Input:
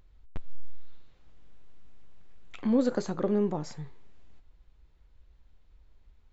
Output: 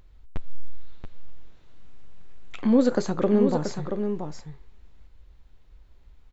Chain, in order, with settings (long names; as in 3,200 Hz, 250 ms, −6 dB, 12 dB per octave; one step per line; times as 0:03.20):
single-tap delay 680 ms −7 dB
level +5.5 dB